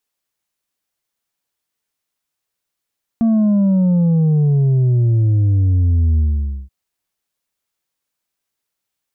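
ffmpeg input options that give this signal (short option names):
-f lavfi -i "aevalsrc='0.266*clip((3.48-t)/0.51,0,1)*tanh(1.58*sin(2*PI*230*3.48/log(65/230)*(exp(log(65/230)*t/3.48)-1)))/tanh(1.58)':d=3.48:s=44100"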